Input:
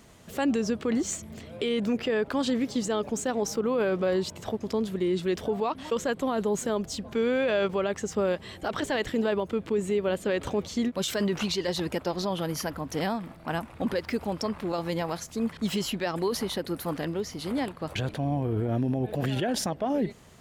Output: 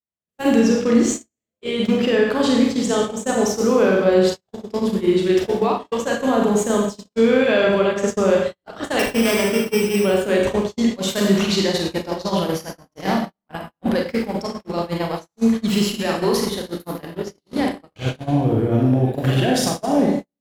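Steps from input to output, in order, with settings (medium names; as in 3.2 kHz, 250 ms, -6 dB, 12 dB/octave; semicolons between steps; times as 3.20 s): 8.99–9.96 s: sorted samples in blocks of 16 samples; Schroeder reverb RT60 0.95 s, combs from 31 ms, DRR -1.5 dB; gate -25 dBFS, range -55 dB; trim +6 dB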